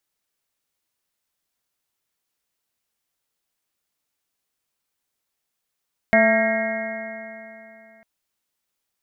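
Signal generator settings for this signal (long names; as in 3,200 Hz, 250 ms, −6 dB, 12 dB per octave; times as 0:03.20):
stiff-string partials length 1.90 s, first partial 220 Hz, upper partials −13.5/5/−12.5/−17.5/−13/−4/−1/0 dB, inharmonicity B 0.0022, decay 2.98 s, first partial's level −19 dB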